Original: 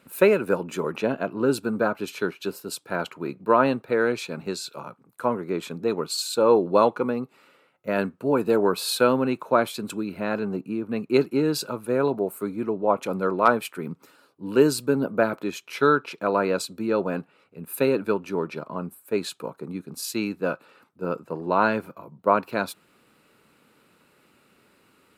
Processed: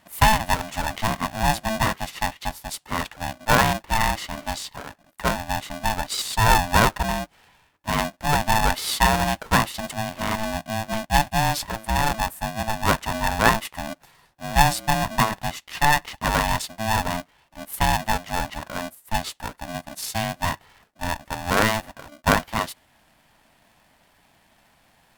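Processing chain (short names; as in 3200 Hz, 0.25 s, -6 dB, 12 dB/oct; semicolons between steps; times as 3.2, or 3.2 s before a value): polarity switched at an audio rate 440 Hz; gain +1 dB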